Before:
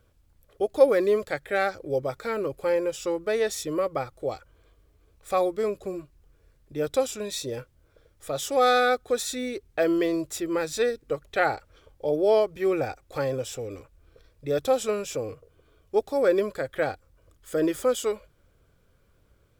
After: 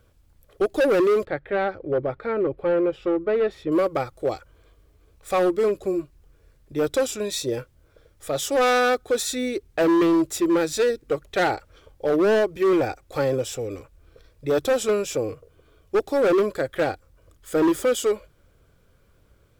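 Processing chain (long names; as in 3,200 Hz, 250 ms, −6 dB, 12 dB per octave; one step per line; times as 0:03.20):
dynamic equaliser 340 Hz, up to +7 dB, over −40 dBFS, Q 3
gain into a clipping stage and back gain 20 dB
0:01.25–0:03.72: high-frequency loss of the air 440 metres
level +4 dB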